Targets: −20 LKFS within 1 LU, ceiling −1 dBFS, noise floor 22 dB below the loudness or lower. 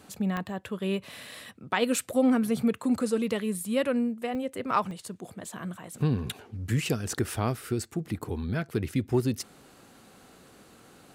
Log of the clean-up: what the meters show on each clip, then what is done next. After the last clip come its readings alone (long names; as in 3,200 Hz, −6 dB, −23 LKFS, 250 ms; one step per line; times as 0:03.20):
number of dropouts 4; longest dropout 1.7 ms; integrated loudness −29.5 LKFS; sample peak −11.5 dBFS; target loudness −20.0 LKFS
→ repair the gap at 0:00.37/0:04.35/0:04.91/0:09.42, 1.7 ms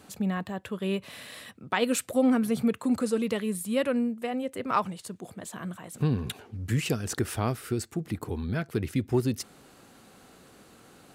number of dropouts 0; integrated loudness −29.5 LKFS; sample peak −11.5 dBFS; target loudness −20.0 LKFS
→ level +9.5 dB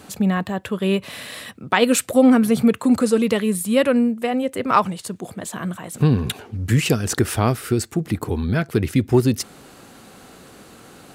integrated loudness −20.0 LKFS; sample peak −2.0 dBFS; background noise floor −46 dBFS